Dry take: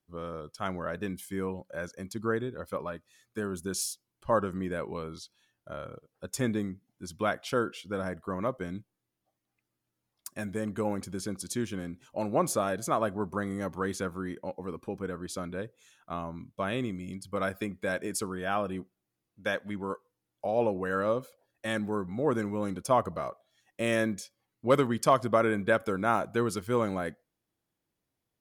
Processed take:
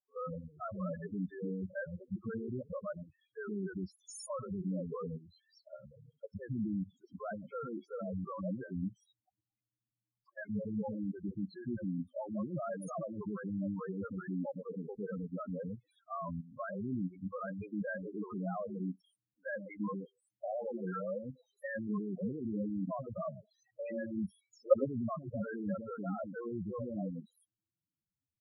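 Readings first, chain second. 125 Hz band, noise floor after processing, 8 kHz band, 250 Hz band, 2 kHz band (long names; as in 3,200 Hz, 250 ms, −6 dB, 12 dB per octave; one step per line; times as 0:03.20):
−4.5 dB, below −85 dBFS, below −15 dB, −4.0 dB, −12.5 dB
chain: output level in coarse steps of 19 dB
three-band delay without the direct sound mids, lows, highs 110/350 ms, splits 420/4,200 Hz
spectral peaks only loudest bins 4
level +5.5 dB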